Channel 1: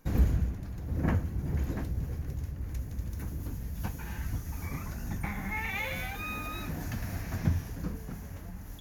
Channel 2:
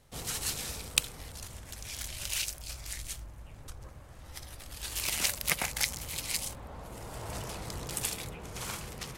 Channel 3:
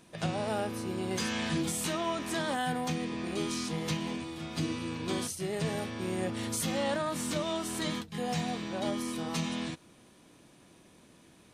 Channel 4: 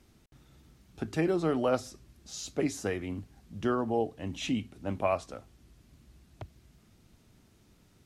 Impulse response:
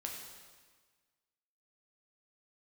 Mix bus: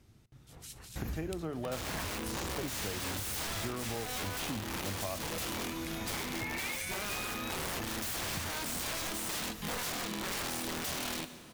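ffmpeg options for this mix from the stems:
-filter_complex "[0:a]tiltshelf=f=800:g=-6.5,adelay=900,volume=-3dB[a];[1:a]acrossover=split=2200[b][c];[b]aeval=exprs='val(0)*(1-1/2+1/2*cos(2*PI*4.4*n/s))':c=same[d];[c]aeval=exprs='val(0)*(1-1/2-1/2*cos(2*PI*4.4*n/s))':c=same[e];[d][e]amix=inputs=2:normalize=0,adelay=350,volume=-11.5dB,asplit=2[f][g];[g]volume=-14dB[h];[2:a]acrossover=split=170|3000[i][j][k];[i]acompressor=threshold=-54dB:ratio=2[l];[l][j][k]amix=inputs=3:normalize=0,aeval=exprs='(mod(35.5*val(0)+1,2)-1)/35.5':c=same,adelay=1500,volume=1dB,asplit=2[m][n];[n]volume=-7dB[o];[3:a]equalizer=f=110:t=o:w=0.65:g=10.5,volume=-4dB,asplit=2[p][q];[q]volume=-14dB[r];[4:a]atrim=start_sample=2205[s];[h][o][r]amix=inputs=3:normalize=0[t];[t][s]afir=irnorm=-1:irlink=0[u];[a][f][m][p][u]amix=inputs=5:normalize=0,acompressor=threshold=-34dB:ratio=6"

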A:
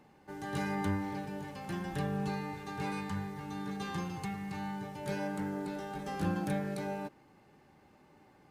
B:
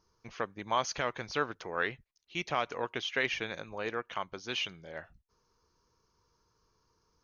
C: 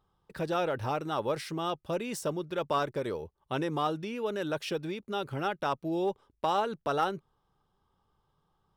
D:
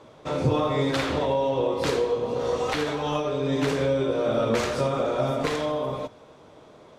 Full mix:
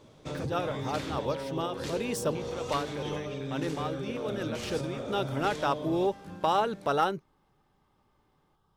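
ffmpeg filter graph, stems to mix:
-filter_complex "[0:a]adelay=50,volume=-12dB[a];[1:a]acompressor=threshold=-41dB:ratio=4,volume=-6dB,asplit=2[b][c];[2:a]volume=2.5dB[d];[3:a]equalizer=f=1k:t=o:w=2.9:g=-11,acompressor=threshold=-33dB:ratio=6,volume=0dB[e];[c]apad=whole_len=386317[f];[d][f]sidechaincompress=threshold=-52dB:ratio=8:attack=8.7:release=211[g];[a][b][g][e]amix=inputs=4:normalize=0"

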